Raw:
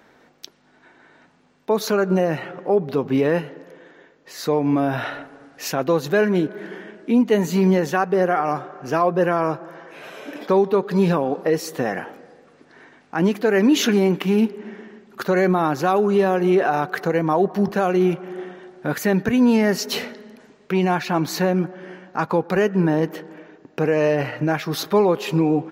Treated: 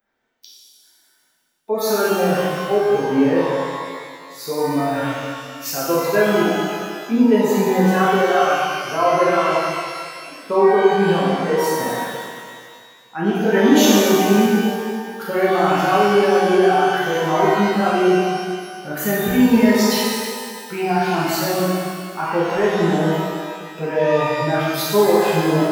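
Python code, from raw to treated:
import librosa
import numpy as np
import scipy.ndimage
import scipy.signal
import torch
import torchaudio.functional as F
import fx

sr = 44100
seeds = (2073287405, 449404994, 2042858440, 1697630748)

y = fx.bin_expand(x, sr, power=1.5)
y = fx.high_shelf(y, sr, hz=10000.0, db=11.0)
y = fx.rev_shimmer(y, sr, seeds[0], rt60_s=1.9, semitones=12, shimmer_db=-8, drr_db=-8.0)
y = y * 10.0 ** (-3.0 / 20.0)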